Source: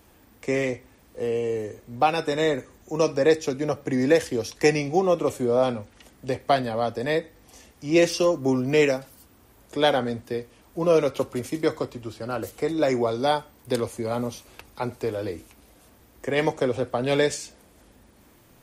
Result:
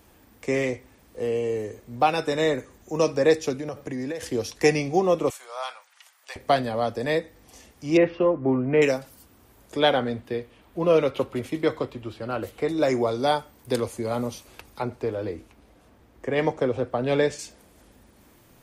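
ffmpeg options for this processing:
-filter_complex "[0:a]asettb=1/sr,asplit=3[a][b][c];[a]atrim=end=3.584[d];[b]atrim=start=3.58:end=4.23,asetpts=PTS-STARTPTS,afade=t=in:d=0.004:c=qsin,afade=t=out:st=0.646:d=0.004:c=qsin,acompressor=threshold=-27dB:ratio=10:attack=3.2:release=140:knee=1:detection=peak[e];[c]atrim=start=4.226[f];[d][e]acrossfade=d=0.004:c1=hsin:c2=qsin[g];[g][f]acrossfade=d=0.004:c1=qsin:c2=hsin,asettb=1/sr,asplit=3[h][i][j];[h]atrim=end=5.304[k];[i]atrim=start=5.3:end=6.36,asetpts=PTS-STARTPTS,afade=t=in:d=0.004:c=qsin,afade=t=out:st=1.056:d=0.004:c=qsin,highpass=f=940:w=0.5412,highpass=f=940:w=1.3066[l];[j]atrim=start=6.356[m];[k][l]acrossfade=d=0.004:c1=hsin:c2=qsin[n];[n][m]acrossfade=d=0.004:c1=qsin:c2=hsin,asettb=1/sr,asplit=3[o][p][q];[o]atrim=end=7.974[r];[p]atrim=start=7.97:end=8.82,asetpts=PTS-STARTPTS,afade=t=in:d=0.004:c=qsin,afade=t=out:st=0.846:d=0.004:c=qsin,lowpass=f=2.2k:w=0.5412,lowpass=f=2.2k:w=1.3066[s];[q]atrim=start=8.816[t];[r][s]acrossfade=d=0.004:c1=hsin:c2=qsin[u];[u][t]acrossfade=d=0.004:c1=qsin:c2=hsin,asettb=1/sr,asplit=3[v][w][x];[v]atrim=end=9.794[y];[w]atrim=start=9.79:end=12.69,asetpts=PTS-STARTPTS,afade=t=in:d=0.004:c=qsin,afade=t=out:st=2.896:d=0.004:c=qsin,highshelf=f=4.4k:t=q:w=1.5:g=-7[z];[x]atrim=start=12.686[aa];[y][z]acrossfade=d=0.004:c1=hsin:c2=qsin[ab];[ab][aa]acrossfade=d=0.004:c1=qsin:c2=hsin,asettb=1/sr,asplit=3[ac][ad][ae];[ac]atrim=end=14.824[af];[ad]atrim=start=14.82:end=17.39,asetpts=PTS-STARTPTS,afade=t=in:d=0.004:c=qsin,afade=t=out:st=2.566:d=0.004:c=qsin,lowpass=f=2.3k:p=1[ag];[ae]atrim=start=17.386[ah];[af][ag]acrossfade=d=0.004:c1=hsin:c2=qsin[ai];[ai][ah]acrossfade=d=0.004:c1=qsin:c2=hsin"

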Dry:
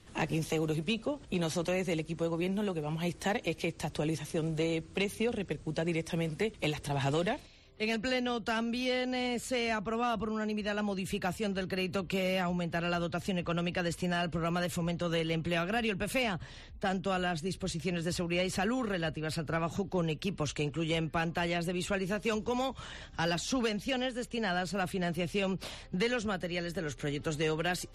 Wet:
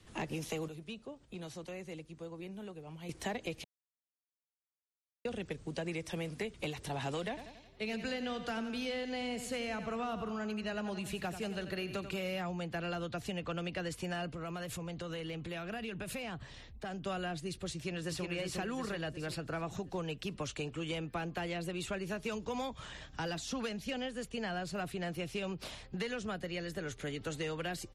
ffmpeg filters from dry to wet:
-filter_complex "[0:a]asettb=1/sr,asplit=3[a][b][c];[a]atrim=end=7.284[d];[b]atrim=start=7.28:end=12.17,asetpts=PTS-STARTPTS,afade=t=in:d=0.004:c=qsin,afade=t=out:st=4.886:d=0.004:c=qsin,aecho=1:1:89|178|267|356|445:0.251|0.131|0.0679|0.0353|0.0184,atrim=end_sample=215649[e];[c]atrim=start=12.166[f];[d][e]acrossfade=d=0.004:c1=hsin:c2=qsin[g];[g][f]acrossfade=d=0.004:c1=qsin:c2=hsin,asettb=1/sr,asplit=3[h][i][j];[h]atrim=end=14.344[k];[i]atrim=start=14.34:end=17.02,asetpts=PTS-STARTPTS,afade=t=in:d=0.004:c=qsin,afade=t=out:st=2.676:d=0.004:c=qsin,acompressor=threshold=-34dB:ratio=6:attack=3.2:release=140:knee=1:detection=peak[l];[j]atrim=start=17.016[m];[k][l]acrossfade=d=0.004:c1=hsin:c2=qsin[n];[n][m]acrossfade=d=0.004:c1=qsin:c2=hsin,asplit=2[o][p];[p]afade=t=in:st=17.73:d=0.01,afade=t=out:st=18.28:d=0.01,aecho=0:1:360|720|1080|1440|1800|2160|2520:0.707946|0.353973|0.176986|0.0884932|0.0442466|0.0221233|0.0110617[q];[o][q]amix=inputs=2:normalize=0,asplit=5[r][s][t][u][v];[r]atrim=end=0.682[w];[s]atrim=start=0.678:end=3.092,asetpts=PTS-STARTPTS,volume=-10.5dB[x];[t]atrim=start=3.088:end=3.64,asetpts=PTS-STARTPTS,afade=t=out:st=0.548:d=0.004:c=hsin[y];[u]atrim=start=3.64:end=5.25,asetpts=PTS-STARTPTS,volume=0[z];[v]atrim=start=5.25,asetpts=PTS-STARTPTS,afade=t=in:d=0.004:c=hsin[aa];[w][x]acrossfade=d=0.004:c1=hsin:c2=hsin[ab];[y][z][aa]concat=n=3:v=0:a=1[ac];[ab][ac]acrossfade=d=0.004:c1=hsin:c2=hsin,acrossover=split=200|670[ad][ae][af];[ad]acompressor=threshold=-43dB:ratio=4[ag];[ae]acompressor=threshold=-37dB:ratio=4[ah];[af]acompressor=threshold=-37dB:ratio=4[ai];[ag][ah][ai]amix=inputs=3:normalize=0,volume=-2.5dB"

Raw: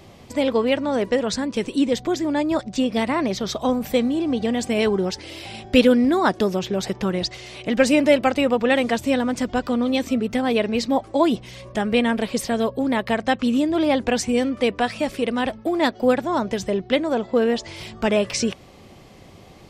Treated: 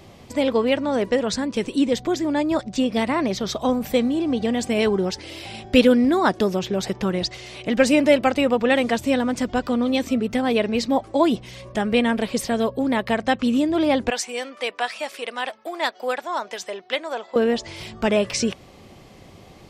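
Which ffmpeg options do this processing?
-filter_complex "[0:a]asettb=1/sr,asplit=3[a][b][c];[a]atrim=end=14.104[d];[b]atrim=start=14.1:end=17.36,asetpts=PTS-STARTPTS,afade=t=in:d=0.004:c=qsin,afade=t=out:st=3.256:d=0.004:c=qsin,highpass=730[e];[c]atrim=start=17.356[f];[d][e]acrossfade=d=0.004:c1=hsin:c2=qsin[g];[g][f]acrossfade=d=0.004:c1=qsin:c2=hsin"

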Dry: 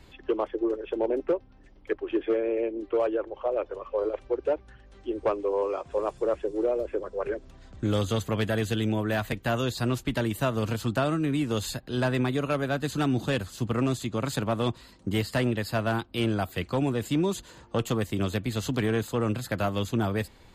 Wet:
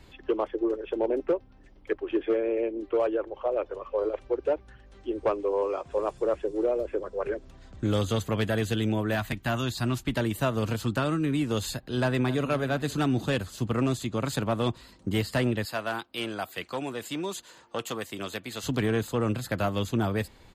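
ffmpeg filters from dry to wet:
-filter_complex "[0:a]asettb=1/sr,asplit=3[a][b][c];[a]atrim=end=9.154[d];[b]atrim=start=9.15:end=10.08,asetpts=PTS-STARTPTS,afade=t=in:d=0.004:c=qsin,afade=t=out:st=0.926:d=0.004:c=qsin,equalizer=f=480:t=o:w=0.41:g=-12[e];[c]atrim=start=10.076[f];[d][e]acrossfade=d=0.004:c1=hsin:c2=qsin[g];[g][f]acrossfade=d=0.004:c1=qsin:c2=hsin,asettb=1/sr,asplit=3[h][i][j];[h]atrim=end=10.864[k];[i]atrim=start=10.86:end=11.32,asetpts=PTS-STARTPTS,afade=t=in:d=0.004:c=qsin,afade=t=out:st=0.456:d=0.004:c=qsin,equalizer=f=690:w=5.6:g=-8.5[l];[j]atrim=start=11.316[m];[k][l]acrossfade=d=0.004:c1=hsin:c2=qsin[n];[n][m]acrossfade=d=0.004:c1=qsin:c2=hsin,asplit=2[o][p];[p]afade=t=in:st=12:d=0.01,afade=t=out:st=12.51:d=0.01,aecho=0:1:260|520|780|1040:0.188365|0.0847642|0.0381439|0.0171648[q];[o][q]amix=inputs=2:normalize=0,asettb=1/sr,asplit=3[r][s][t];[r]atrim=end=15.654[u];[s]atrim=start=15.65:end=18.64,asetpts=PTS-STARTPTS,afade=t=in:d=0.004:c=qsin,afade=t=out:st=2.986:d=0.004:c=qsin,highpass=f=690:p=1[v];[t]atrim=start=18.636[w];[u][v]acrossfade=d=0.004:c1=hsin:c2=qsin[x];[x][w]acrossfade=d=0.004:c1=qsin:c2=hsin"

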